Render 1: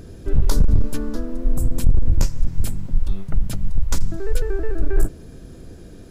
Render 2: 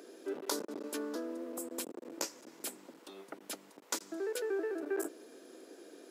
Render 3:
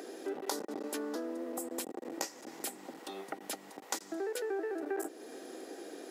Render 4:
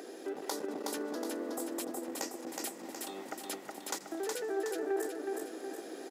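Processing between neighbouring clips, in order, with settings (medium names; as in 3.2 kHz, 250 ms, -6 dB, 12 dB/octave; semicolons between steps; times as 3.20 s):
steep high-pass 300 Hz 36 dB/octave; trim -5.5 dB
compression 2:1, threshold -47 dBFS, peak gain reduction 9.5 dB; small resonant body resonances 780/1900 Hz, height 11 dB, ringing for 45 ms; trim +7 dB
in parallel at -4.5 dB: overload inside the chain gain 27.5 dB; on the sum: feedback delay 368 ms, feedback 49%, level -3 dB; trim -5 dB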